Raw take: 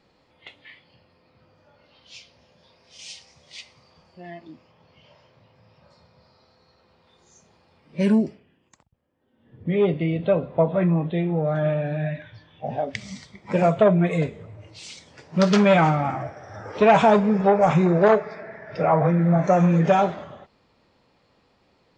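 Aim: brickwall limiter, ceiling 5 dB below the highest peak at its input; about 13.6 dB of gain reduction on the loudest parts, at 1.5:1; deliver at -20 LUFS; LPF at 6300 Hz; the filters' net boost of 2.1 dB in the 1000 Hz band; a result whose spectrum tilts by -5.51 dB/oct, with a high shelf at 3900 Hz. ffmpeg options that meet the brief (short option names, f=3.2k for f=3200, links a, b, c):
-af "lowpass=6.3k,equalizer=f=1k:t=o:g=3.5,highshelf=f=3.9k:g=-7,acompressor=threshold=-50dB:ratio=1.5,volume=14dB,alimiter=limit=-8.5dB:level=0:latency=1"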